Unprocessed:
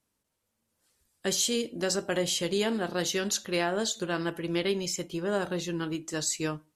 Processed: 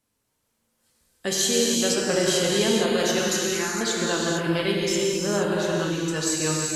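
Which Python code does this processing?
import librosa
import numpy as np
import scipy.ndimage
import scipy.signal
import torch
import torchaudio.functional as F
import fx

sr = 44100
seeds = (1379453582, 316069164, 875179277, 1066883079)

y = fx.fixed_phaser(x, sr, hz=1400.0, stages=4, at=(3.33, 3.81))
y = fx.rev_gated(y, sr, seeds[0], gate_ms=490, shape='flat', drr_db=-3.5)
y = F.gain(torch.from_numpy(y), 2.0).numpy()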